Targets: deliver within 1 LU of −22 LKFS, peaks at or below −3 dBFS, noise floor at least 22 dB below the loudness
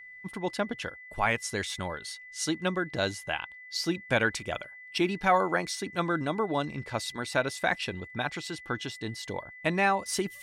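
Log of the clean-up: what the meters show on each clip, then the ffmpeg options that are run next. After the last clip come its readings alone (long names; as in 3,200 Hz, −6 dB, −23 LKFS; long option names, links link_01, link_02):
interfering tone 2,000 Hz; level of the tone −45 dBFS; integrated loudness −30.5 LKFS; sample peak −12.5 dBFS; target loudness −22.0 LKFS
→ -af "bandreject=frequency=2000:width=30"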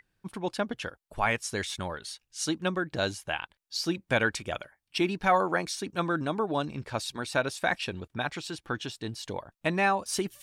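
interfering tone none found; integrated loudness −30.5 LKFS; sample peak −12.0 dBFS; target loudness −22.0 LKFS
→ -af "volume=8.5dB"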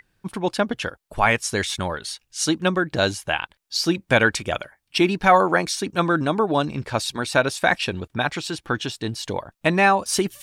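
integrated loudness −22.0 LKFS; sample peak −3.5 dBFS; background noise floor −72 dBFS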